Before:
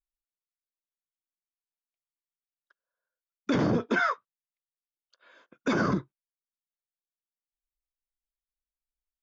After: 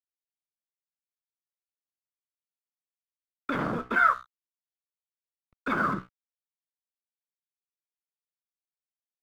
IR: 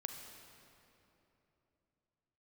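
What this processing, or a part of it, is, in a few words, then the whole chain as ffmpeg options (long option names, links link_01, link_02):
pocket radio on a weak battery: -af "lowpass=3500,bandreject=frequency=61.84:width_type=h:width=4,bandreject=frequency=123.68:width_type=h:width=4,bandreject=frequency=185.52:width_type=h:width=4,bandreject=frequency=247.36:width_type=h:width=4,bandreject=frequency=309.2:width_type=h:width=4,bandreject=frequency=371.04:width_type=h:width=4,bandreject=frequency=432.88:width_type=h:width=4,bandreject=frequency=494.72:width_type=h:width=4,bandreject=frequency=556.56:width_type=h:width=4,bandreject=frequency=618.4:width_type=h:width=4,bandreject=frequency=680.24:width_type=h:width=4,bandreject=frequency=742.08:width_type=h:width=4,bandreject=frequency=803.92:width_type=h:width=4,bandreject=frequency=865.76:width_type=h:width=4,bandreject=frequency=927.6:width_type=h:width=4,bandreject=frequency=989.44:width_type=h:width=4,bandreject=frequency=1051.28:width_type=h:width=4,bandreject=frequency=1113.12:width_type=h:width=4,bandreject=frequency=1174.96:width_type=h:width=4,bandreject=frequency=1236.8:width_type=h:width=4,bandreject=frequency=1298.64:width_type=h:width=4,bandreject=frequency=1360.48:width_type=h:width=4,bandreject=frequency=1422.32:width_type=h:width=4,bandreject=frequency=1484.16:width_type=h:width=4,bandreject=frequency=1546:width_type=h:width=4,bandreject=frequency=1607.84:width_type=h:width=4,bandreject=frequency=1669.68:width_type=h:width=4,bandreject=frequency=1731.52:width_type=h:width=4,bandreject=frequency=1793.36:width_type=h:width=4,bandreject=frequency=1855.2:width_type=h:width=4,bandreject=frequency=1917.04:width_type=h:width=4,bandreject=frequency=1978.88:width_type=h:width=4,anlmdn=0.01,highpass=390,lowpass=3400,aeval=exprs='sgn(val(0))*max(abs(val(0))-0.00316,0)':channel_layout=same,equalizer=frequency=1300:width_type=o:width=0.38:gain=9,asubboost=boost=9:cutoff=140,volume=1dB"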